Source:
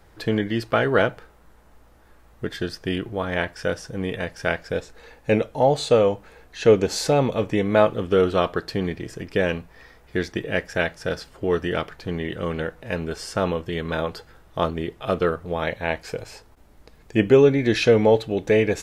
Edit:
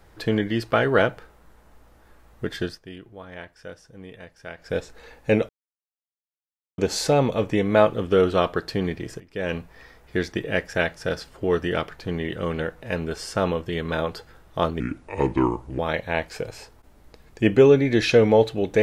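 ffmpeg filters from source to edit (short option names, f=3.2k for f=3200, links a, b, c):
-filter_complex "[0:a]asplit=8[a][b][c][d][e][f][g][h];[a]atrim=end=2.81,asetpts=PTS-STARTPTS,afade=t=out:st=2.64:d=0.17:silence=0.188365[i];[b]atrim=start=2.81:end=4.57,asetpts=PTS-STARTPTS,volume=-14.5dB[j];[c]atrim=start=4.57:end=5.49,asetpts=PTS-STARTPTS,afade=t=in:d=0.17:silence=0.188365,afade=t=out:st=0.916:d=0.004:c=hsin[k];[d]atrim=start=5.49:end=6.78,asetpts=PTS-STARTPTS,volume=0[l];[e]atrim=start=6.78:end=9.2,asetpts=PTS-STARTPTS,afade=t=in:d=0.004:c=hsin,afade=t=out:st=2.416:d=0.004:c=hsin:silence=0.141254[m];[f]atrim=start=9.2:end=14.804,asetpts=PTS-STARTPTS,afade=t=in:d=0.36:c=qua:silence=0.141254[n];[g]atrim=start=14.8:end=15.52,asetpts=PTS-STARTPTS,asetrate=32193,aresample=44100[o];[h]atrim=start=15.516[p];[i][j][k][l][m][n]concat=n=6:v=0:a=1[q];[q][o]acrossfade=d=0.004:c1=hsin:c2=hsin[r];[r][p]acrossfade=d=0.004:c1=hsin:c2=hsin"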